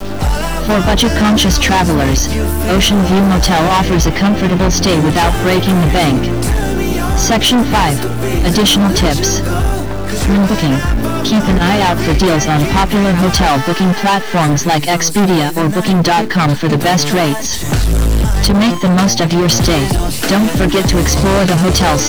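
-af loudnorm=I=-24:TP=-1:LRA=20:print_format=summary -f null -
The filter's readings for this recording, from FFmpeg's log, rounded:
Input Integrated:    -12.3 LUFS
Input True Peak:      -5.7 dBTP
Input LRA:             1.2 LU
Input Threshold:     -22.3 LUFS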